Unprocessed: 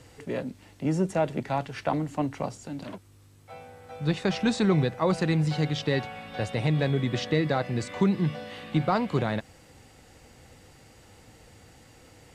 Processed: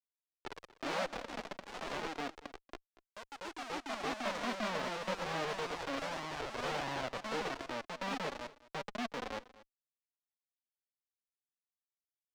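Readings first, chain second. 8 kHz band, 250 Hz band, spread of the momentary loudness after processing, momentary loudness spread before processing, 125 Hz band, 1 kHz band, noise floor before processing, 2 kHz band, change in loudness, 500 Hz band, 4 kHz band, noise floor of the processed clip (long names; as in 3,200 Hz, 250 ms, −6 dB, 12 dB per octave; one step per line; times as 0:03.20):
−5.5 dB, −17.5 dB, 13 LU, 14 LU, −24.5 dB, −6.5 dB, −55 dBFS, −5.0 dB, −11.5 dB, −11.5 dB, −6.0 dB, below −85 dBFS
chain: brick-wall band-stop 300–5,400 Hz
low-shelf EQ 220 Hz +5 dB
harmonic generator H 3 −11 dB, 4 −27 dB, 6 −40 dB, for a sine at −13 dBFS
in parallel at 0 dB: downward compressor 10 to 1, threshold −39 dBFS, peak gain reduction 21 dB
on the sum: comparator with hysteresis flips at −34 dBFS
three-way crossover with the lows and the highs turned down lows −24 dB, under 320 Hz, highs −21 dB, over 5,800 Hz
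flanger 0.29 Hz, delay 1 ms, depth 4.6 ms, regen +23%
on a send: single-tap delay 236 ms −19 dB
on the sum: delay with pitch and tempo change per echo 104 ms, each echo +2 semitones, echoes 3
level +6.5 dB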